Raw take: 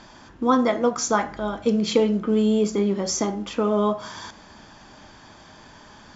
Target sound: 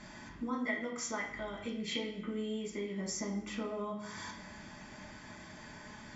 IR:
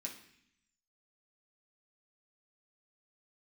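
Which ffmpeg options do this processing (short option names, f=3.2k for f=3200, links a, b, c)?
-filter_complex "[0:a]equalizer=f=2k:t=o:w=0.23:g=11,acompressor=threshold=-36dB:ratio=3,asettb=1/sr,asplit=3[a][b][c];[a]atrim=end=0.654[d];[b]atrim=start=0.65:end=2.97,asetpts=PTS-STARTPTS,afade=t=in:d=0.004:c=qsin,afade=t=out:st=2.316:d=0.004:c=qsin,equalizer=f=200:t=o:w=0.33:g=-5,equalizer=f=2k:t=o:w=0.33:g=7,equalizer=f=3.15k:t=o:w=0.33:g=10[e];[c]atrim=start=2.966[f];[d][e]acrossfade=d=0.004:c1=hsin:c2=qsin[g];[g][f]acrossfade=d=0.004:c1=qsin:c2=hsin[h];[1:a]atrim=start_sample=2205,afade=t=out:st=0.37:d=0.01,atrim=end_sample=16758[i];[h][i]afir=irnorm=-1:irlink=0,volume=-1.5dB"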